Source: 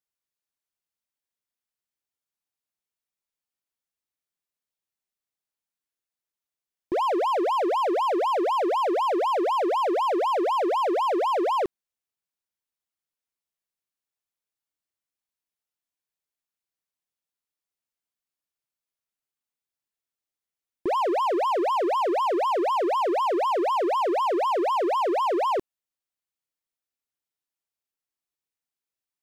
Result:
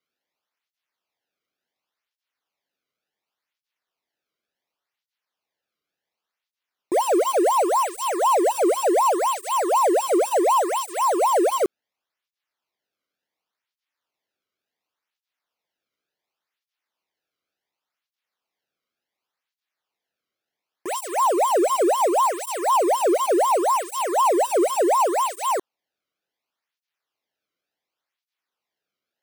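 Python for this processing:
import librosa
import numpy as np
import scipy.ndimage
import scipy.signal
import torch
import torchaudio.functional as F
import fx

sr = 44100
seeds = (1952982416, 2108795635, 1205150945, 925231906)

y = fx.sample_hold(x, sr, seeds[0], rate_hz=8500.0, jitter_pct=0)
y = fx.flanger_cancel(y, sr, hz=0.69, depth_ms=1.2)
y = y * 10.0 ** (6.5 / 20.0)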